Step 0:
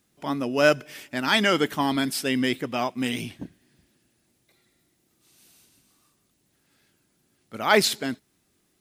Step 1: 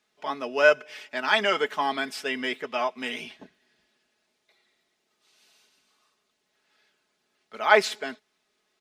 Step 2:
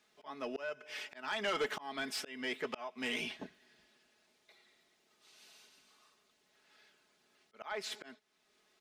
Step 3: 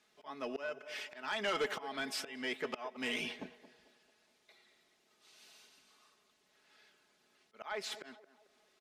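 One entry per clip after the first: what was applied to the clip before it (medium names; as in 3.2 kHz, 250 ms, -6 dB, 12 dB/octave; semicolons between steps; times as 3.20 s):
three-band isolator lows -19 dB, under 420 Hz, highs -18 dB, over 5.9 kHz; comb 4.7 ms, depth 59%; dynamic bell 4.2 kHz, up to -7 dB, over -40 dBFS, Q 1.5
compression 4:1, threshold -25 dBFS, peak gain reduction 11.5 dB; slow attack 543 ms; saturation -30 dBFS, distortion -11 dB; trim +1.5 dB
band-passed feedback delay 222 ms, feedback 44%, band-pass 660 Hz, level -12.5 dB; resampled via 32 kHz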